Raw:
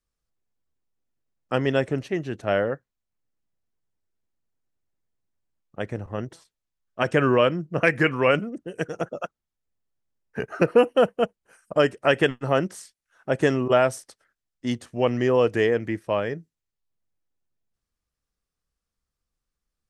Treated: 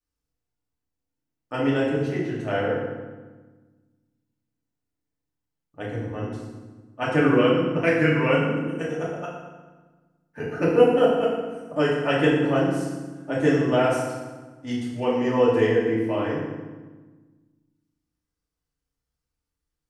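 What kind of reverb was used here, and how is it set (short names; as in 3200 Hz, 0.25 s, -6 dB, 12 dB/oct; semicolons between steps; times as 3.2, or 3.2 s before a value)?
FDN reverb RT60 1.3 s, low-frequency decay 1.5×, high-frequency decay 0.75×, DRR -7 dB; gain -8.5 dB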